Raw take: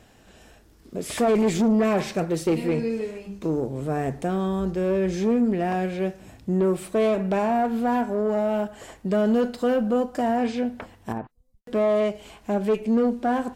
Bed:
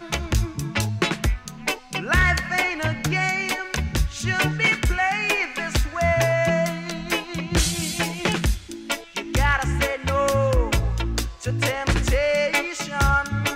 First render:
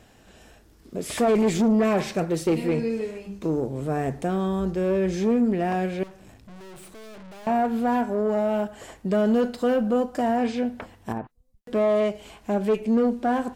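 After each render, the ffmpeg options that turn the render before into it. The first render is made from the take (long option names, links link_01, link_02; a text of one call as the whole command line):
ffmpeg -i in.wav -filter_complex "[0:a]asettb=1/sr,asplit=3[link_01][link_02][link_03];[link_01]atrim=end=6.034[link_04];[link_02]atrim=start=6.03:end=7.47,asetpts=PTS-STARTPTS,afade=type=in:duration=0.004:curve=qsin,afade=type=out:start_time=1.436:duration=0.004:curve=qsin,aeval=exprs='(tanh(141*val(0)+0.5)-tanh(0.5))/141':channel_layout=same[link_05];[link_03]atrim=start=7.466[link_06];[link_04][link_05]acrossfade=duration=0.004:curve1=hsin:curve2=qsin[link_07];[link_07][link_06]acrossfade=duration=0.004:curve1=qsin:curve2=hsin" out.wav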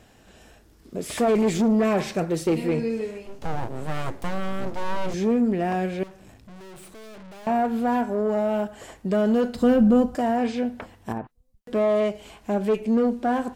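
ffmpeg -i in.wav -filter_complex "[0:a]asettb=1/sr,asplit=3[link_01][link_02][link_03];[link_01]atrim=end=1.054[link_04];[link_02]atrim=start=1.05:end=1.83,asetpts=PTS-STARTPTS,afade=type=in:duration=0.004:curve=qsin,afade=type=out:start_time=0.776:duration=0.004:curve=qsin,aeval=exprs='sgn(val(0))*max(abs(val(0))-0.00266,0)':channel_layout=same[link_05];[link_03]atrim=start=1.826[link_06];[link_04][link_05]acrossfade=duration=0.004:curve1=hsin:curve2=qsin[link_07];[link_07][link_06]acrossfade=duration=0.004:curve1=qsin:curve2=hsin,asettb=1/sr,asplit=3[link_08][link_09][link_10];[link_08]atrim=end=3.264[link_11];[link_09]atrim=start=3.26:end=5.14,asetpts=PTS-STARTPTS,afade=type=in:duration=0.004:curve=qsin,afade=type=out:start_time=1.876:duration=0.004:curve=qsin,aeval=exprs='abs(val(0))':channel_layout=same[link_12];[link_10]atrim=start=5.136[link_13];[link_11][link_12]acrossfade=duration=0.004:curve1=hsin:curve2=qsin[link_14];[link_14][link_13]acrossfade=duration=0.004:curve1=qsin:curve2=hsin,asettb=1/sr,asplit=3[link_15][link_16][link_17];[link_15]atrim=end=9.554[link_18];[link_16]atrim=start=9.55:end=10.15,asetpts=PTS-STARTPTS,afade=type=in:duration=0.004:curve=qsin,afade=type=out:start_time=0.596:duration=0.004:curve=qsin,bass=frequency=250:gain=14,treble=frequency=4000:gain=1[link_19];[link_17]atrim=start=10.146[link_20];[link_18][link_19]acrossfade=duration=0.004:curve1=hsin:curve2=qsin[link_21];[link_21][link_20]acrossfade=duration=0.004:curve1=qsin:curve2=hsin" out.wav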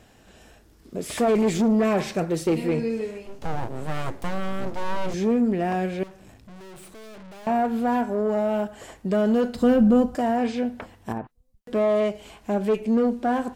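ffmpeg -i in.wav -af anull out.wav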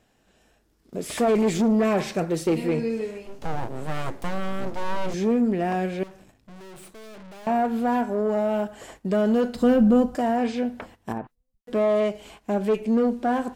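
ffmpeg -i in.wav -af "agate=range=-10dB:threshold=-46dB:ratio=16:detection=peak,equalizer=frequency=80:width=1.7:gain=-5.5" out.wav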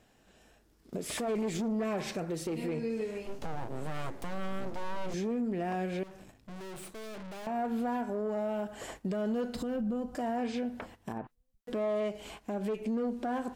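ffmpeg -i in.wav -af "acompressor=threshold=-26dB:ratio=6,alimiter=level_in=2.5dB:limit=-24dB:level=0:latency=1:release=238,volume=-2.5dB" out.wav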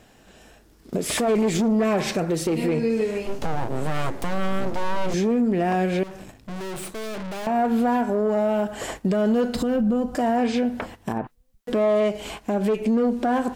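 ffmpeg -i in.wav -af "volume=11.5dB" out.wav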